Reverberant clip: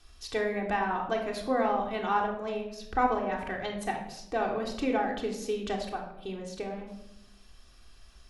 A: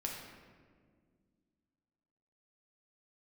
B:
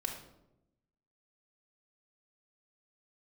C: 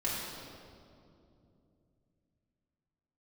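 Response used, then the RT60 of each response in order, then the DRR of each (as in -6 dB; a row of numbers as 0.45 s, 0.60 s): B; 1.8 s, 0.90 s, 2.7 s; -1.0 dB, -0.5 dB, -8.0 dB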